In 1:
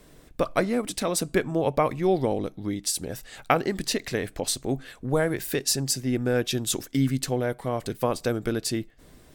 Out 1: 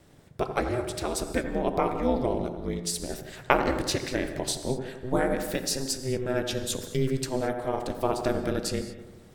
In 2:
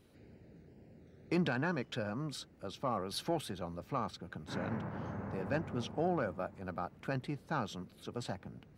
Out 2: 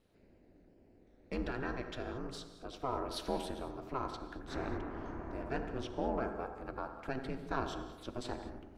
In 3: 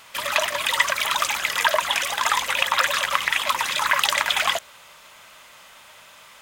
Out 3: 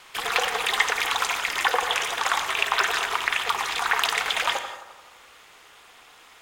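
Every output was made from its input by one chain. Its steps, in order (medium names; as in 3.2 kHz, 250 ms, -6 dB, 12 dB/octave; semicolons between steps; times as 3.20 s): peaking EQ 15 kHz -5 dB 1 oct; gain riding within 4 dB 2 s; ring modulator 130 Hz; bucket-brigade echo 86 ms, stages 1024, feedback 62%, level -9.5 dB; gated-style reverb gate 250 ms flat, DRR 10 dB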